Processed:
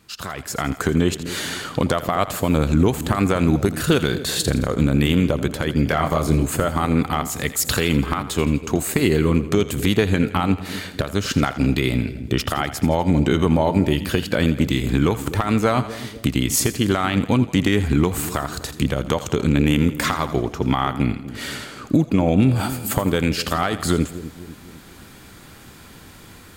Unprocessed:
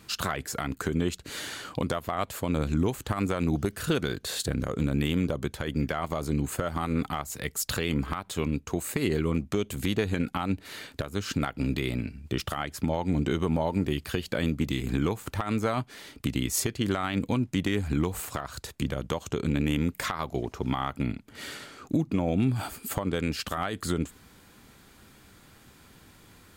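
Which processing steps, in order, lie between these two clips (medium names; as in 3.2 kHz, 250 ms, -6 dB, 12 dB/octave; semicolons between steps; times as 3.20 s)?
level rider gain up to 13.5 dB; 5.84–6.44 s: doubling 25 ms -4.5 dB; two-band feedback delay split 500 Hz, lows 249 ms, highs 83 ms, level -13.5 dB; trim -3 dB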